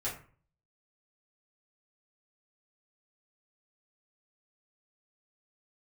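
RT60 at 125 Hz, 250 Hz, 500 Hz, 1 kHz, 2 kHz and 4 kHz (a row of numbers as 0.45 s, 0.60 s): 0.65 s, 0.50 s, 0.40 s, 0.40 s, 0.40 s, 0.25 s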